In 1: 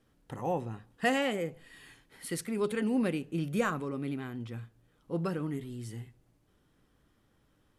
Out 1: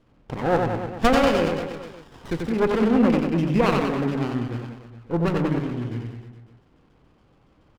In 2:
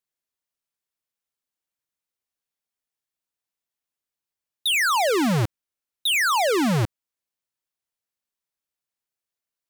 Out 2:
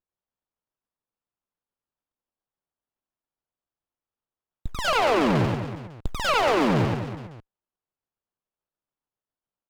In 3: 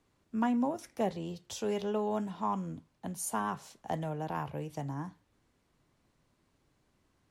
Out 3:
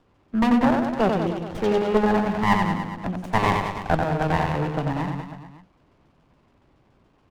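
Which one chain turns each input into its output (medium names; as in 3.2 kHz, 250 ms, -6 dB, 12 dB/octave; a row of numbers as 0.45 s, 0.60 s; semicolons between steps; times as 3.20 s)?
LFO low-pass saw down 7.1 Hz 850–3700 Hz; reverse bouncing-ball echo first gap 90 ms, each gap 1.1×, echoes 5; sliding maximum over 17 samples; normalise loudness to -23 LUFS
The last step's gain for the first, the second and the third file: +8.5 dB, -2.5 dB, +10.0 dB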